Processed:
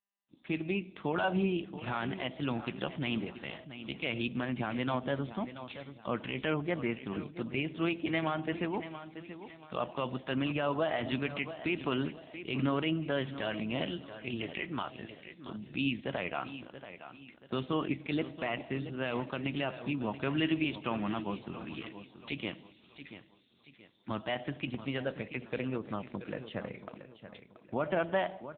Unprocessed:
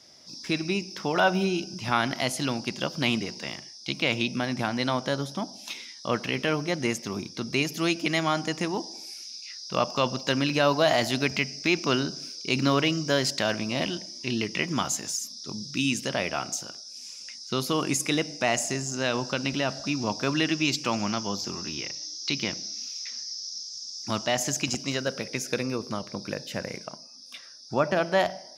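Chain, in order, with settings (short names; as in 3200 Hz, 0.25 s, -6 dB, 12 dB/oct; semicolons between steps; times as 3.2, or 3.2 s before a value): gate -41 dBFS, range -42 dB; 14.02–14.99 dynamic EQ 180 Hz, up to -7 dB, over -42 dBFS, Q 1.1; limiter -15 dBFS, peak gain reduction 7.5 dB; resonator 320 Hz, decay 1 s, mix 50%; feedback echo 0.68 s, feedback 37%, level -12 dB; gain +1.5 dB; AMR-NB 6.7 kbps 8000 Hz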